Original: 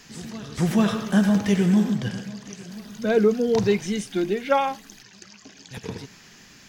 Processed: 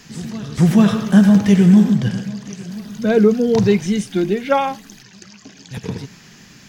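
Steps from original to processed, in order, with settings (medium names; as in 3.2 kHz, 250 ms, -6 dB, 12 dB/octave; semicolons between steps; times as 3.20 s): peaking EQ 150 Hz +7 dB 1.5 oct; trim +3.5 dB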